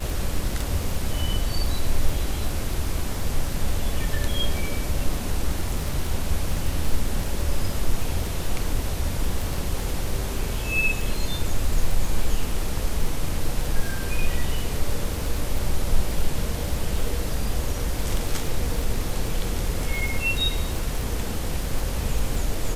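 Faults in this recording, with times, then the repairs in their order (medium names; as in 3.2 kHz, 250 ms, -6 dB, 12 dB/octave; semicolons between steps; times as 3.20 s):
crackle 23 per s -25 dBFS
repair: de-click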